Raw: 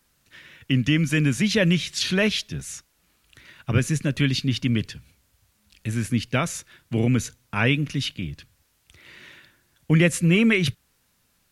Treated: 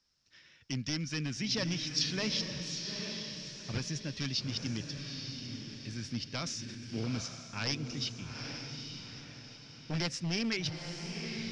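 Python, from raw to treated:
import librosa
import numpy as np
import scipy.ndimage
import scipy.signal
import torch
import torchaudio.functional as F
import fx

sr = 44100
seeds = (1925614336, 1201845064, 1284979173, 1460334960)

y = np.minimum(x, 2.0 * 10.0 ** (-14.0 / 20.0) - x)
y = fx.ladder_lowpass(y, sr, hz=5600.0, resonance_pct=80)
y = fx.echo_diffused(y, sr, ms=857, feedback_pct=42, wet_db=-5.5)
y = fx.sustainer(y, sr, db_per_s=25.0, at=(6.32, 7.08))
y = F.gain(torch.from_numpy(y), -2.5).numpy()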